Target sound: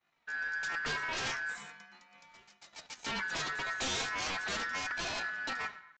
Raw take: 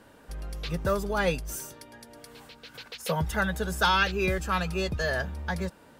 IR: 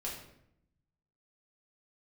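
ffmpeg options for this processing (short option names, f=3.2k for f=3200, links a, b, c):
-filter_complex "[0:a]aeval=exprs='0.266*(cos(1*acos(clip(val(0)/0.266,-1,1)))-cos(1*PI/2))+0.0188*(cos(2*acos(clip(val(0)/0.266,-1,1)))-cos(2*PI/2))+0.106*(cos(7*acos(clip(val(0)/0.266,-1,1)))-cos(7*PI/2))':c=same,asetrate=66075,aresample=44100,atempo=0.66742,agate=range=-33dB:threshold=-36dB:ratio=3:detection=peak,asplit=2[a][b];[1:a]atrim=start_sample=2205,lowpass=4k[c];[b][c]afir=irnorm=-1:irlink=0,volume=-11dB[d];[a][d]amix=inputs=2:normalize=0,aeval=exprs='val(0)*sin(2*PI*1600*n/s)':c=same,flanger=delay=2.8:depth=4.8:regen=68:speed=0.39:shape=sinusoidal,aresample=16000,asoftclip=type=tanh:threshold=-28.5dB,aresample=44100"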